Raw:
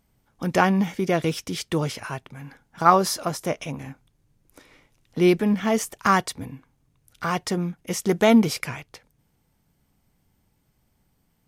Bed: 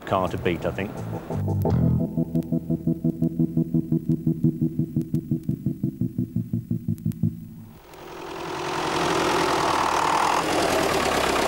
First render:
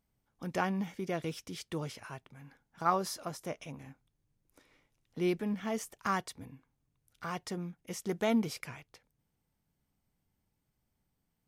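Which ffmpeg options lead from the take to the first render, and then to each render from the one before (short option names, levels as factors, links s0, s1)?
-af "volume=0.224"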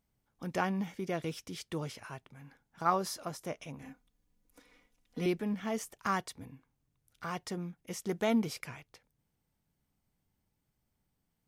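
-filter_complex "[0:a]asettb=1/sr,asplit=3[s0][s1][s2];[s0]atrim=end=3.824[s3];[s1]atrim=start=3.82:end=5.26,asetpts=PTS-STARTPTS,afade=t=in:d=0.004:c=qsin,afade=t=out:st=1.436:d=0.004:c=qsin,aecho=1:1:4.1:0.98,atrim=end_sample=63504[s4];[s2]atrim=start=5.256[s5];[s3][s4]acrossfade=d=0.004:c1=hsin:c2=qsin[s6];[s6][s5]acrossfade=d=0.004:c1=qsin:c2=hsin"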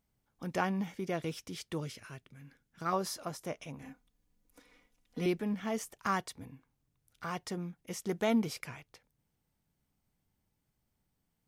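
-filter_complex "[0:a]asettb=1/sr,asplit=3[s0][s1][s2];[s0]atrim=end=1.804[s3];[s1]atrim=start=1.8:end=2.93,asetpts=PTS-STARTPTS,afade=t=in:d=0.004:c=qsin,afade=t=out:st=1.126:d=0.004:c=qsin,equalizer=f=850:w=1.6:g=-12.5[s4];[s2]atrim=start=2.926[s5];[s3][s4]acrossfade=d=0.004:c1=hsin:c2=qsin[s6];[s6][s5]acrossfade=d=0.004:c1=qsin:c2=hsin"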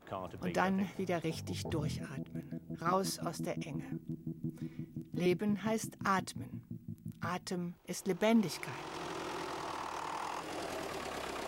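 -filter_complex "[1:a]volume=0.112[s0];[0:a][s0]amix=inputs=2:normalize=0"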